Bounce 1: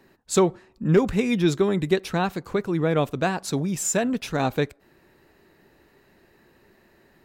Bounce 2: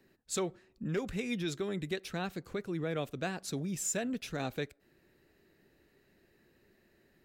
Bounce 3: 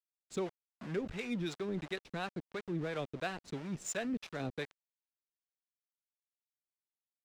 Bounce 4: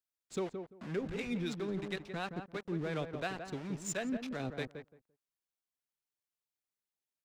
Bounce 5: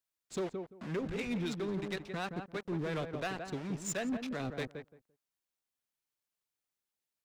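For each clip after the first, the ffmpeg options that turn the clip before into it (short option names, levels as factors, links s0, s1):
-filter_complex "[0:a]equalizer=f=960:w=1.7:g=-9,acrossover=split=550|6600[s0][s1][s2];[s0]alimiter=limit=0.0841:level=0:latency=1:release=269[s3];[s3][s1][s2]amix=inputs=3:normalize=0,volume=0.376"
-filter_complex "[0:a]aeval=exprs='val(0)*gte(abs(val(0)),0.00891)':c=same,adynamicsmooth=sensitivity=7.5:basefreq=3700,acrossover=split=510[s0][s1];[s0]aeval=exprs='val(0)*(1-0.7/2+0.7/2*cos(2*PI*2.9*n/s))':c=same[s2];[s1]aeval=exprs='val(0)*(1-0.7/2-0.7/2*cos(2*PI*2.9*n/s))':c=same[s3];[s2][s3]amix=inputs=2:normalize=0,volume=1.12"
-filter_complex "[0:a]asplit=2[s0][s1];[s1]adelay=171,lowpass=f=1100:p=1,volume=0.501,asplit=2[s2][s3];[s3]adelay=171,lowpass=f=1100:p=1,volume=0.18,asplit=2[s4][s5];[s5]adelay=171,lowpass=f=1100:p=1,volume=0.18[s6];[s0][s2][s4][s6]amix=inputs=4:normalize=0"
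-af "asoftclip=type=hard:threshold=0.0237,volume=1.26"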